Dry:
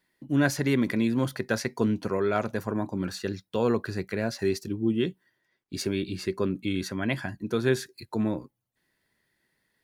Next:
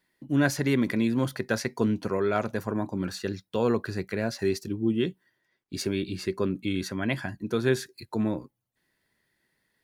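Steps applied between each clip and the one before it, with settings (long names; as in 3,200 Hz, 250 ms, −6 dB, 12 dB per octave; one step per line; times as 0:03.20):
no processing that can be heard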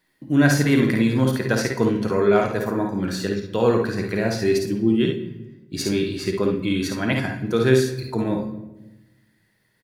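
on a send: ambience of single reflections 54 ms −6 dB, 69 ms −8 dB
on the sum: rectangular room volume 450 cubic metres, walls mixed, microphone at 0.56 metres
level +4.5 dB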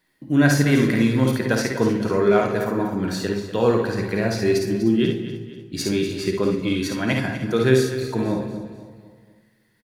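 repeating echo 245 ms, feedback 44%, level −12.5 dB
feedback echo with a swinging delay time 144 ms, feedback 60%, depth 123 cents, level −22 dB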